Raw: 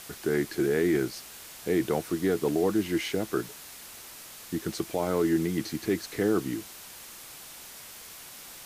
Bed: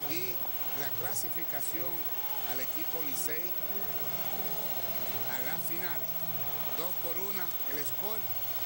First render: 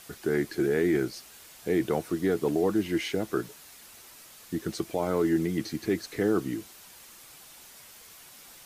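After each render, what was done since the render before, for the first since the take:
broadband denoise 6 dB, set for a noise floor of −46 dBFS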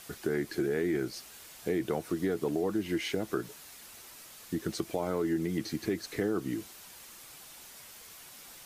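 downward compressor 3 to 1, threshold −28 dBFS, peak gain reduction 6.5 dB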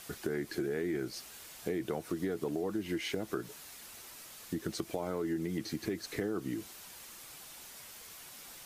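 downward compressor 2 to 1, threshold −34 dBFS, peak gain reduction 5 dB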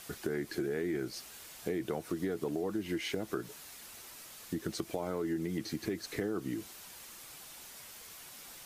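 no processing that can be heard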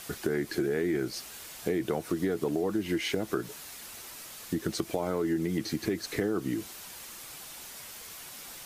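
level +5.5 dB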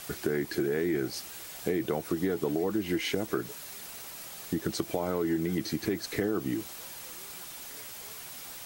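mix in bed −15.5 dB

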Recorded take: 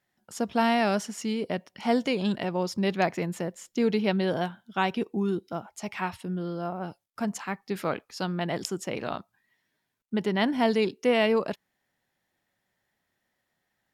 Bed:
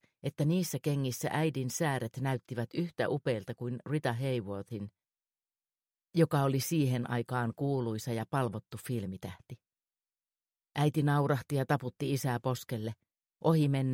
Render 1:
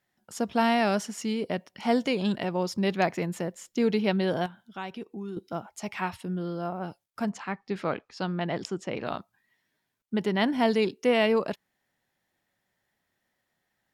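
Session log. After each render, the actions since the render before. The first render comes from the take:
0:04.46–0:05.37: downward compressor 1.5 to 1, threshold −51 dBFS
0:07.30–0:09.07: high-frequency loss of the air 100 metres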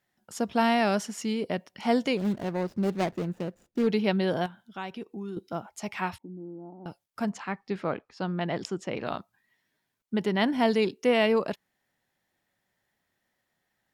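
0:02.17–0:03.87: running median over 41 samples
0:06.18–0:06.86: formant resonators in series u
0:07.76–0:08.38: high-shelf EQ 2,200 Hz −7.5 dB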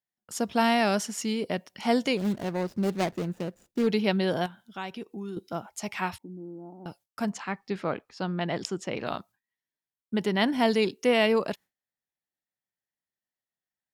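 noise gate with hold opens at −51 dBFS
high-shelf EQ 3,700 Hz +6 dB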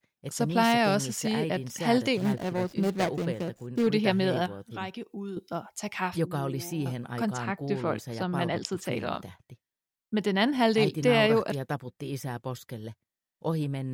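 mix in bed −2.5 dB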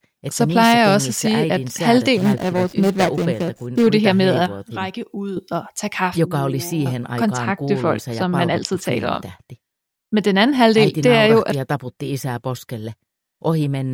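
level +10.5 dB
brickwall limiter −3 dBFS, peak gain reduction 3 dB

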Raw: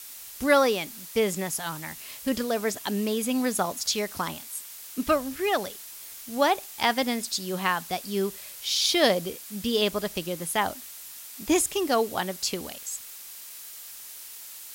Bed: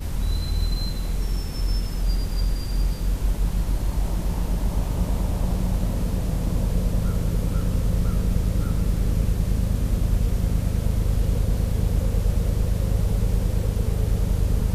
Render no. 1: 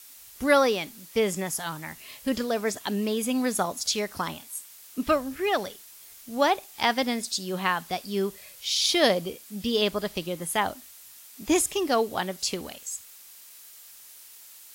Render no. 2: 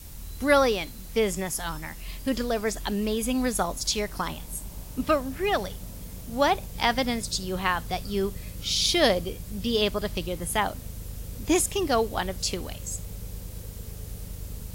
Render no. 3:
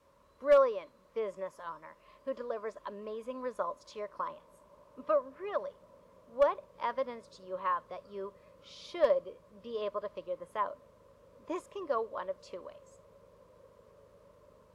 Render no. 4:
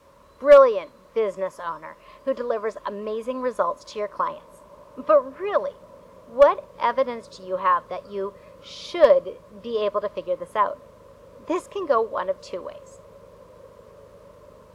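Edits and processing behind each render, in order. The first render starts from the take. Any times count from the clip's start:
noise reduction from a noise print 6 dB
mix in bed −16 dB
pair of resonant band-passes 770 Hz, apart 0.83 octaves; gain into a clipping stage and back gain 16.5 dB
level +12 dB

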